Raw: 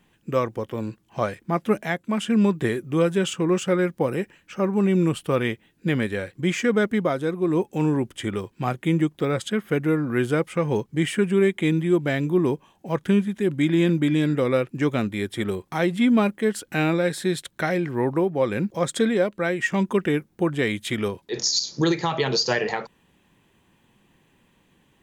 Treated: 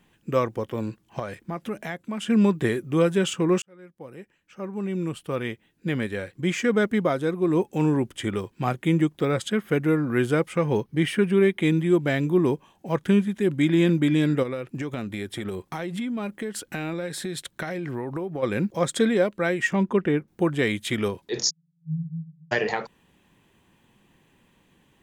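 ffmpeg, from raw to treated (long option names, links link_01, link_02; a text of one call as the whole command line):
ffmpeg -i in.wav -filter_complex "[0:a]asettb=1/sr,asplit=3[link_01][link_02][link_03];[link_01]atrim=end=1.194[link_04];[link_02]atrim=start=1.19:end=2.27,asetpts=PTS-STARTPTS,afade=type=in:duration=0.004:curve=qsin,afade=type=out:start_time=1.076:duration=0.004:curve=qsin,acompressor=threshold=-29dB:ratio=3:attack=3.2:release=140:knee=1:detection=peak[link_05];[link_03]atrim=start=2.266[link_06];[link_04][link_05]acrossfade=duration=0.004:curve1=hsin:curve2=qsin[link_07];[link_07][link_06]acrossfade=duration=0.004:curve1=qsin:curve2=hsin,asettb=1/sr,asplit=3[link_08][link_09][link_10];[link_08]atrim=end=10.654[link_11];[link_09]atrim=start=10.65:end=11.61,asetpts=PTS-STARTPTS,afade=type=in:duration=0.004:curve=qsin,afade=type=out:start_time=0.956:duration=0.004:curve=qsin,equalizer=frequency=7400:width=4.5:gain=-13[link_12];[link_10]atrim=start=11.606[link_13];[link_11][link_12]acrossfade=duration=0.004:curve1=hsin:curve2=qsin[link_14];[link_14][link_13]acrossfade=duration=0.004:curve1=qsin:curve2=hsin,asplit=3[link_15][link_16][link_17];[link_15]afade=type=out:start_time=14.42:duration=0.02[link_18];[link_16]acompressor=threshold=-26dB:ratio=12:attack=3.2:release=140:knee=1:detection=peak,afade=type=in:start_time=14.42:duration=0.02,afade=type=out:start_time=18.42:duration=0.02[link_19];[link_17]afade=type=in:start_time=18.42:duration=0.02[link_20];[link_18][link_19][link_20]amix=inputs=3:normalize=0,asettb=1/sr,asplit=3[link_21][link_22][link_23];[link_21]atrim=end=19.734[link_24];[link_22]atrim=start=19.73:end=20.28,asetpts=PTS-STARTPTS,afade=type=in:duration=0.004:curve=qsin,afade=type=out:start_time=0.546:duration=0.004:curve=qsin,lowpass=frequency=1800:poles=1[link_25];[link_23]atrim=start=20.276[link_26];[link_24][link_25]acrossfade=duration=0.004:curve1=hsin:curve2=qsin[link_27];[link_27][link_26]acrossfade=duration=0.004:curve1=qsin:curve2=hsin,asplit=3[link_28][link_29][link_30];[link_28]afade=type=out:start_time=21.49:duration=0.02[link_31];[link_29]asuperpass=centerf=160:order=20:qfactor=7,afade=type=in:start_time=21.49:duration=0.02,afade=type=out:start_time=22.51:duration=0.02[link_32];[link_30]afade=type=in:start_time=22.51:duration=0.02[link_33];[link_31][link_32][link_33]amix=inputs=3:normalize=0,asplit=2[link_34][link_35];[link_34]atrim=end=3.62,asetpts=PTS-STARTPTS,afade=type=out:start_time=3.616:duration=0.004:curve=hsin[link_36];[link_35]atrim=start=3.62,asetpts=PTS-STARTPTS,afade=type=in:duration=3.49[link_37];[link_36][link_37]concat=n=2:v=0:a=1" out.wav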